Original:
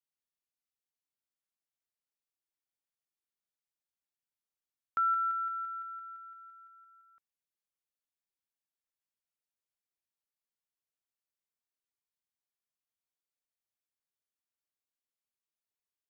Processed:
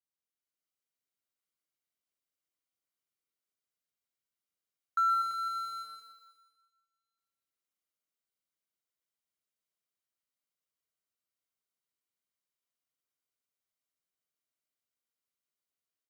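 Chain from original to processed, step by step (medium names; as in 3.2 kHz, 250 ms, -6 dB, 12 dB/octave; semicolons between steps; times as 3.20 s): jump at every zero crossing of -39.5 dBFS; level rider gain up to 5 dB; gate -33 dBFS, range -45 dB; comb of notches 860 Hz; feedback delay 122 ms, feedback 57%, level -5 dB; trim -4.5 dB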